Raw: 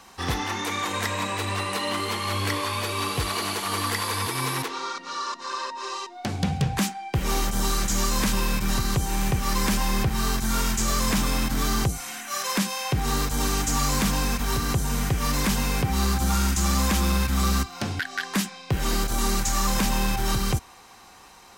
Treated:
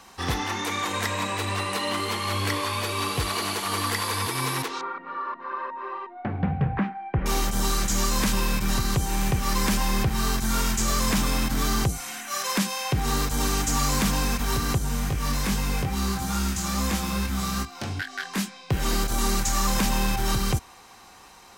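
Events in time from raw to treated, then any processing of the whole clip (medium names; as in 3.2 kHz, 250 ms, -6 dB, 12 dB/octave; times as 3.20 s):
4.81–7.26 s: low-pass 2 kHz 24 dB/octave
14.78–18.70 s: chorus 2.4 Hz, delay 19.5 ms, depth 2.5 ms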